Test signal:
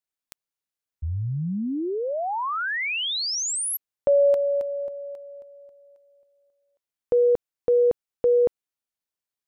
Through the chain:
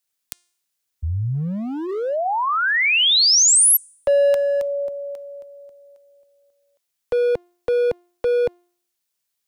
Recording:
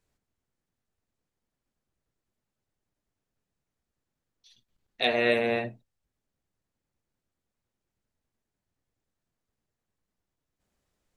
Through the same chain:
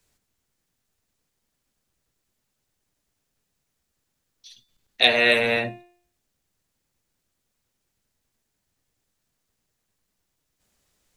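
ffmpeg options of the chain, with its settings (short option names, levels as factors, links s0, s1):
-filter_complex "[0:a]highshelf=f=2200:g=9.5,bandreject=f=351.9:t=h:w=4,bandreject=f=703.8:t=h:w=4,bandreject=f=1055.7:t=h:w=4,bandreject=f=1407.6:t=h:w=4,bandreject=f=1759.5:t=h:w=4,bandreject=f=2111.4:t=h:w=4,bandreject=f=2463.3:t=h:w=4,bandreject=f=2815.2:t=h:w=4,bandreject=f=3167.1:t=h:w=4,bandreject=f=3519:t=h:w=4,bandreject=f=3870.9:t=h:w=4,bandreject=f=4222.8:t=h:w=4,bandreject=f=4574.7:t=h:w=4,bandreject=f=4926.6:t=h:w=4,bandreject=f=5278.5:t=h:w=4,bandreject=f=5630.4:t=h:w=4,bandreject=f=5982.3:t=h:w=4,bandreject=f=6334.2:t=h:w=4,bandreject=f=6686.1:t=h:w=4,bandreject=f=7038:t=h:w=4,bandreject=f=7389.9:t=h:w=4,bandreject=f=7741.8:t=h:w=4,bandreject=f=8093.7:t=h:w=4,bandreject=f=8445.6:t=h:w=4,bandreject=f=8797.5:t=h:w=4,bandreject=f=9149.4:t=h:w=4,bandreject=f=9501.3:t=h:w=4,bandreject=f=9853.2:t=h:w=4,acrossover=split=150|530|2700[s0][s1][s2][s3];[s1]asoftclip=type=hard:threshold=0.0237[s4];[s0][s4][s2][s3]amix=inputs=4:normalize=0,volume=1.68"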